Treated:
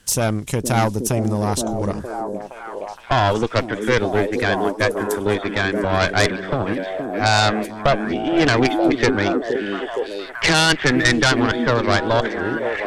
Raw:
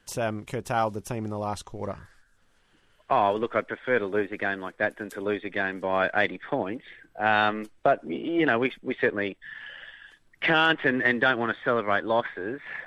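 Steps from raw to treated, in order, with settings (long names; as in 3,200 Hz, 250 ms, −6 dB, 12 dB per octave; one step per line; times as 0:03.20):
harmonic generator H 5 −12 dB, 6 −12 dB, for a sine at −7 dBFS
bass and treble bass +6 dB, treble +13 dB
echo through a band-pass that steps 467 ms, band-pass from 290 Hz, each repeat 0.7 octaves, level −0.5 dB
level −1 dB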